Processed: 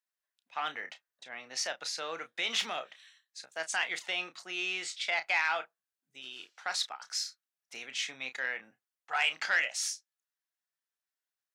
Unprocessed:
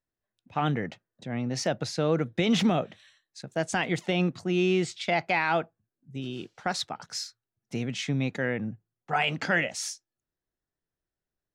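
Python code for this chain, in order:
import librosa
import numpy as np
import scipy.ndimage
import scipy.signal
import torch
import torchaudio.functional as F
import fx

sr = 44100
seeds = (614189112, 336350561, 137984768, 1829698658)

y = scipy.signal.sosfilt(scipy.signal.butter(2, 1200.0, 'highpass', fs=sr, output='sos'), x)
y = fx.doubler(y, sr, ms=31.0, db=-10.5)
y = fx.transformer_sat(y, sr, knee_hz=1800.0)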